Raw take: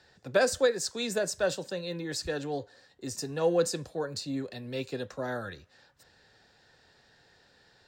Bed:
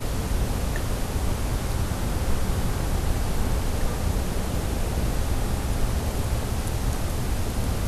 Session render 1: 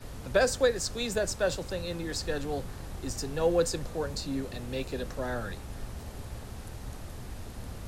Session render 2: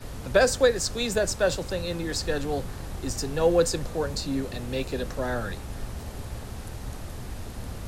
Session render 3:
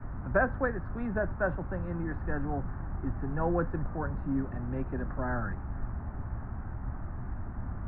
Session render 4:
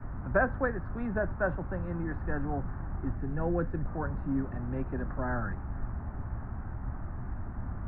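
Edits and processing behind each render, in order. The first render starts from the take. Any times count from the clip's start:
add bed -15 dB
trim +4.5 dB
steep low-pass 1.6 kHz 36 dB/octave; peaking EQ 480 Hz -14 dB 0.63 oct
3.15–3.87 s: peaking EQ 1 kHz -7 dB 1.1 oct

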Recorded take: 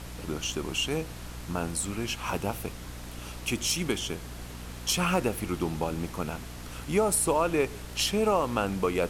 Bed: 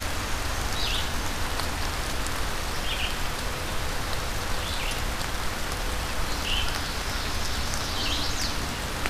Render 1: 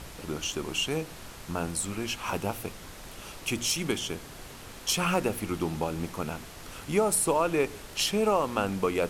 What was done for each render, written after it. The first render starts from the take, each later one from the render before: de-hum 60 Hz, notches 5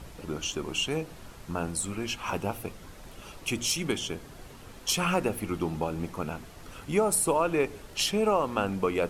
noise reduction 7 dB, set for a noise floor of -45 dBFS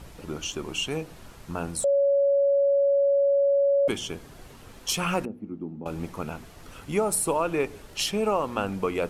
1.84–3.88 s: bleep 560 Hz -18 dBFS; 5.25–5.86 s: band-pass filter 240 Hz, Q 2.3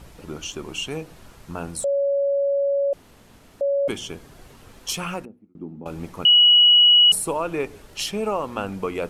2.93–3.61 s: room tone; 4.91–5.55 s: fade out; 6.25–7.12 s: bleep 2.92 kHz -10 dBFS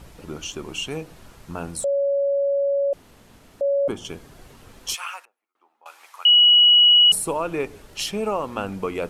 3.64–4.05 s: resonant high shelf 1.6 kHz -7.5 dB, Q 1.5; 4.94–6.89 s: high-pass 910 Hz 24 dB/octave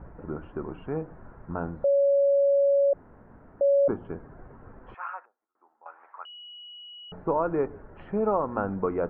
steep low-pass 1.6 kHz 36 dB/octave; band-stop 1.2 kHz, Q 21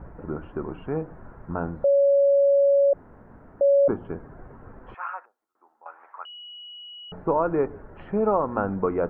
trim +3 dB

